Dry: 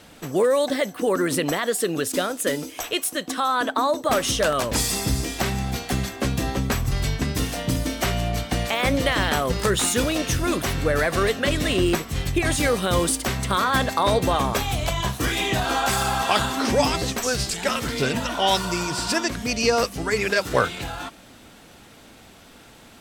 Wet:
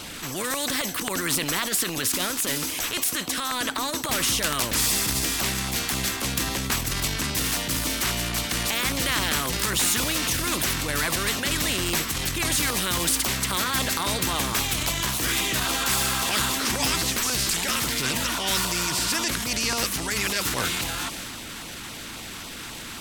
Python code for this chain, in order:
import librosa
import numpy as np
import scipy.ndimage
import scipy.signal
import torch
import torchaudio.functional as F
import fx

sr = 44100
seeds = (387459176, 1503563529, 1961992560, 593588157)

y = fx.filter_lfo_notch(x, sr, shape='saw_down', hz=3.7, low_hz=440.0, high_hz=1900.0, q=2.0)
y = fx.transient(y, sr, attack_db=-7, sustain_db=4)
y = fx.band_shelf(y, sr, hz=570.0, db=-8.0, octaves=1.2)
y = fx.spectral_comp(y, sr, ratio=2.0)
y = y * librosa.db_to_amplitude(2.0)